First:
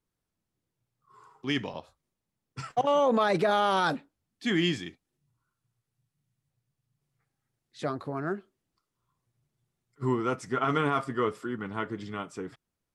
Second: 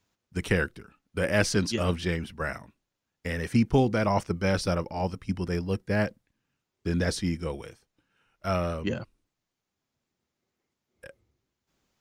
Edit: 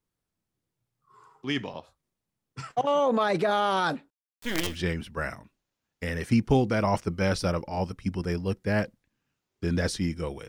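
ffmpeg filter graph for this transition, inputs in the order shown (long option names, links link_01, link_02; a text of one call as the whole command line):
ffmpeg -i cue0.wav -i cue1.wav -filter_complex "[0:a]asettb=1/sr,asplit=3[link_01][link_02][link_03];[link_01]atrim=end=4.104[link_04];[link_02]atrim=start=4.1:end=4.79,asetpts=PTS-STARTPTS,afade=type=in:duration=0.004:curve=qsin,afade=type=out:start_time=0.686:duration=0.004:curve=qsin,acrusher=bits=4:dc=4:mix=0:aa=0.000001[link_05];[link_03]atrim=start=4.786[link_06];[link_04][link_05]acrossfade=duration=0.004:curve1=hsin:curve2=qsin[link_07];[link_07][link_06]acrossfade=duration=0.004:curve1=qsin:curve2=hsin,apad=whole_dur=10.48,atrim=end=10.48,atrim=end=4.79,asetpts=PTS-STARTPTS[link_08];[1:a]atrim=start=1.84:end=7.71,asetpts=PTS-STARTPTS[link_09];[link_08][link_09]acrossfade=duration=0.18:curve1=tri:curve2=tri" out.wav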